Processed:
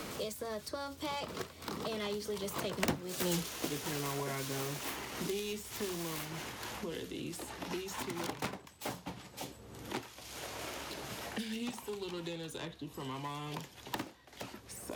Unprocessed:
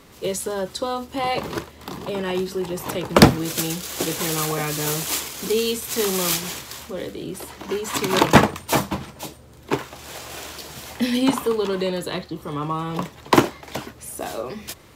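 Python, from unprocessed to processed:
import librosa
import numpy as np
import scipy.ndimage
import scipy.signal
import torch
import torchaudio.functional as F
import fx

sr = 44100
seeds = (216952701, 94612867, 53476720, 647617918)

y = fx.self_delay(x, sr, depth_ms=0.22)
y = fx.doppler_pass(y, sr, speed_mps=36, closest_m=2.2, pass_at_s=3.36)
y = fx.band_squash(y, sr, depth_pct=100)
y = y * 10.0 ** (14.0 / 20.0)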